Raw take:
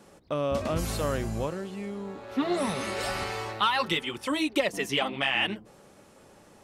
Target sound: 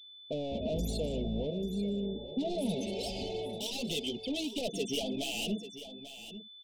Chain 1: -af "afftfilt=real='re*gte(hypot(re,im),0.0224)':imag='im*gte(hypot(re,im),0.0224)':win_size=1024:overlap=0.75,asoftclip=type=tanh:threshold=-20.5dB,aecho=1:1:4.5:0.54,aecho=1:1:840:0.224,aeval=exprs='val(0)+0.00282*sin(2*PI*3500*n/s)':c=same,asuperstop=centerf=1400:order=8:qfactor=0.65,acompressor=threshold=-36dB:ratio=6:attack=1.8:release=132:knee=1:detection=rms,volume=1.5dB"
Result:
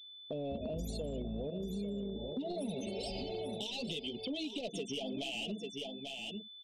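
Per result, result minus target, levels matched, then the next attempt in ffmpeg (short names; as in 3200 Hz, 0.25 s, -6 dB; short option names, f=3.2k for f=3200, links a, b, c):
compressor: peak gain reduction +13.5 dB; soft clip: distortion -9 dB
-af "afftfilt=real='re*gte(hypot(re,im),0.0224)':imag='im*gte(hypot(re,im),0.0224)':win_size=1024:overlap=0.75,asoftclip=type=tanh:threshold=-20.5dB,aecho=1:1:4.5:0.54,aecho=1:1:840:0.224,aeval=exprs='val(0)+0.00282*sin(2*PI*3500*n/s)':c=same,asuperstop=centerf=1400:order=8:qfactor=0.65,volume=1.5dB"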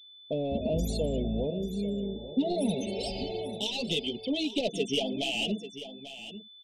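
soft clip: distortion -9 dB
-af "afftfilt=real='re*gte(hypot(re,im),0.0224)':imag='im*gte(hypot(re,im),0.0224)':win_size=1024:overlap=0.75,asoftclip=type=tanh:threshold=-31dB,aecho=1:1:4.5:0.54,aecho=1:1:840:0.224,aeval=exprs='val(0)+0.00282*sin(2*PI*3500*n/s)':c=same,asuperstop=centerf=1400:order=8:qfactor=0.65,volume=1.5dB"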